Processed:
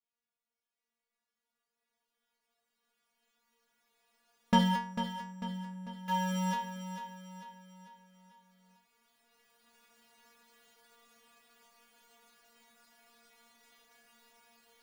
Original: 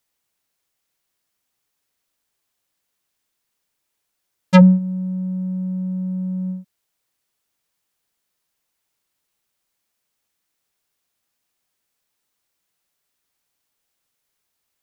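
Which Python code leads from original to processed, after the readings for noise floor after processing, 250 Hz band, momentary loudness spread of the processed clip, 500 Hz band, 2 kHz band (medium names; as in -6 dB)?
under -85 dBFS, -16.5 dB, 20 LU, -16.5 dB, -8.0 dB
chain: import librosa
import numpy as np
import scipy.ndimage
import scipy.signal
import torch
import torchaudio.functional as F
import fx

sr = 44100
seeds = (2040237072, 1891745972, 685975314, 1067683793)

p1 = fx.recorder_agc(x, sr, target_db=-7.5, rise_db_per_s=5.8, max_gain_db=30)
p2 = fx.peak_eq(p1, sr, hz=160.0, db=2.5, octaves=0.43)
p3 = fx.quant_companded(p2, sr, bits=2)
p4 = p2 + F.gain(torch.from_numpy(p3), -6.0).numpy()
p5 = fx.lowpass(p4, sr, hz=1700.0, slope=6)
p6 = fx.low_shelf(p5, sr, hz=230.0, db=-7.5)
p7 = fx.stiff_resonator(p6, sr, f0_hz=230.0, decay_s=0.45, stiffness=0.002)
p8 = p7 + fx.echo_feedback(p7, sr, ms=446, feedback_pct=48, wet_db=-9.5, dry=0)
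y = F.gain(torch.from_numpy(p8), 2.5).numpy()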